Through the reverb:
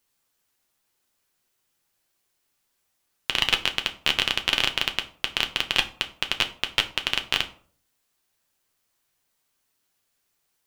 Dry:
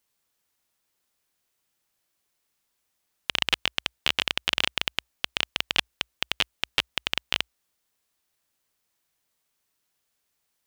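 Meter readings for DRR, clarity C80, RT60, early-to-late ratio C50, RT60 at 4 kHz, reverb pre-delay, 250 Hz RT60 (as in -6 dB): 5.0 dB, 19.0 dB, 0.50 s, 15.0 dB, 0.30 s, 6 ms, 0.55 s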